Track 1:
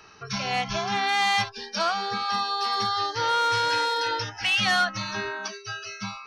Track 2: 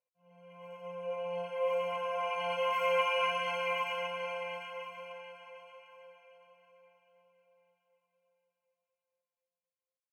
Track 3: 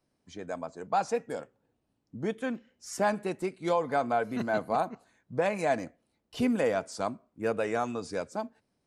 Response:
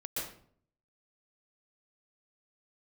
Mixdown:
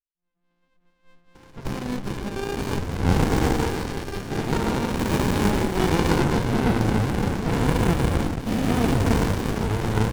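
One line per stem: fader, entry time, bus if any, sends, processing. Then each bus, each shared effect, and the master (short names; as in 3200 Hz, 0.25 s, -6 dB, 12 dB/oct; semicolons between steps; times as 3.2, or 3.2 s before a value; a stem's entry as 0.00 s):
+2.5 dB, 1.35 s, no send, dry
-5.5 dB, 0.00 s, send -5.5 dB, vocal tract filter e
0.0 dB, 2.30 s, send -6.5 dB, spectral dilation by 0.48 s; high shelf 5100 Hz +10.5 dB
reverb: on, RT60 0.55 s, pre-delay 0.114 s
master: high shelf 5100 Hz +9.5 dB; running maximum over 65 samples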